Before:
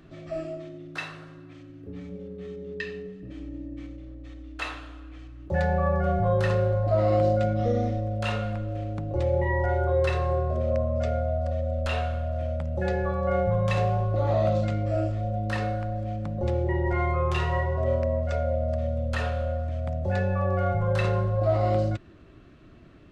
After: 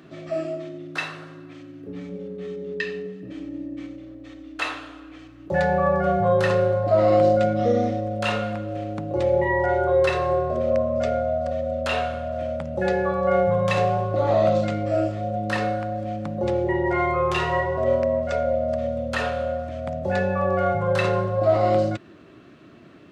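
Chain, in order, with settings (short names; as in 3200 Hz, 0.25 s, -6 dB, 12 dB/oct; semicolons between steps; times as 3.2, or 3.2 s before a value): HPF 170 Hz 12 dB/oct; gain +6 dB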